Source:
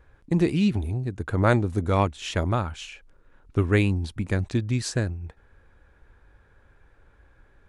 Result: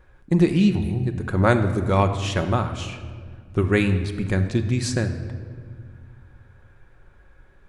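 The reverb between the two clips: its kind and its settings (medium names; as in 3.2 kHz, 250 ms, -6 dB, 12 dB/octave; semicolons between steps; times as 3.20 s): simulated room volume 2700 m³, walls mixed, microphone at 0.99 m; trim +2 dB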